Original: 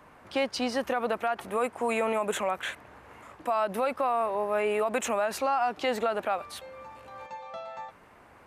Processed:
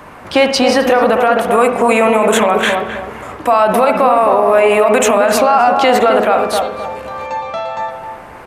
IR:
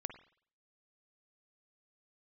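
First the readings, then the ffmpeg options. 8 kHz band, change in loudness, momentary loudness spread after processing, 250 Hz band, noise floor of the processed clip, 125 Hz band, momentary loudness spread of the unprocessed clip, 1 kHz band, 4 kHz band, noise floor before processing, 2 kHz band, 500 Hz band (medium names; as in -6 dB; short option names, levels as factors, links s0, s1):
+17.0 dB, +17.0 dB, 13 LU, +18.5 dB, -34 dBFS, no reading, 15 LU, +17.5 dB, +17.5 dB, -55 dBFS, +17.0 dB, +18.0 dB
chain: -filter_complex "[0:a]asplit=2[s0][s1];[s1]adelay=262,lowpass=f=830:p=1,volume=0.631,asplit=2[s2][s3];[s3]adelay=262,lowpass=f=830:p=1,volume=0.41,asplit=2[s4][s5];[s5]adelay=262,lowpass=f=830:p=1,volume=0.41,asplit=2[s6][s7];[s7]adelay=262,lowpass=f=830:p=1,volume=0.41,asplit=2[s8][s9];[s9]adelay=262,lowpass=f=830:p=1,volume=0.41[s10];[s0][s2][s4][s6][s8][s10]amix=inputs=6:normalize=0[s11];[1:a]atrim=start_sample=2205[s12];[s11][s12]afir=irnorm=-1:irlink=0,alimiter=level_in=12.6:limit=0.891:release=50:level=0:latency=1,volume=0.891"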